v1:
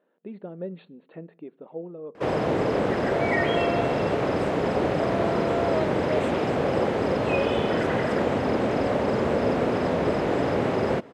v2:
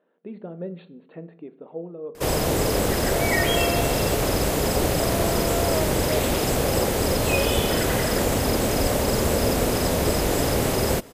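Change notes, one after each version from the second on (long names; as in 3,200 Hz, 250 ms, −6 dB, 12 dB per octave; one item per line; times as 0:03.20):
speech: send +11.0 dB
first sound: remove band-pass filter 140–2,100 Hz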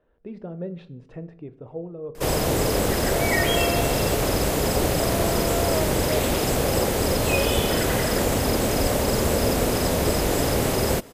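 speech: remove linear-phase brick-wall band-pass 160–4,500 Hz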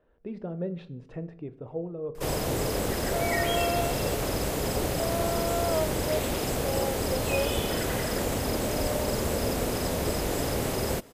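first sound −6.5 dB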